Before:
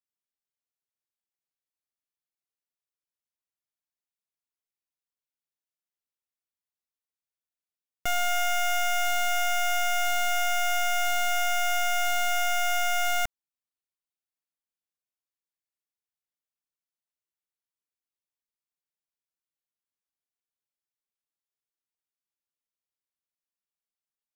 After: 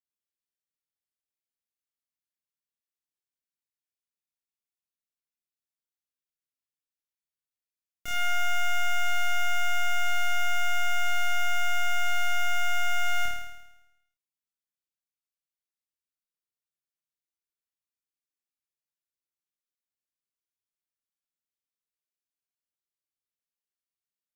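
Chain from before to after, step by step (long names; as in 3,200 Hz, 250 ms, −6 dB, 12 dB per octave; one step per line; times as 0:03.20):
parametric band 780 Hz −14.5 dB 0.64 octaves
flutter between parallel walls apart 4.6 metres, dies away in 0.93 s
level −8.5 dB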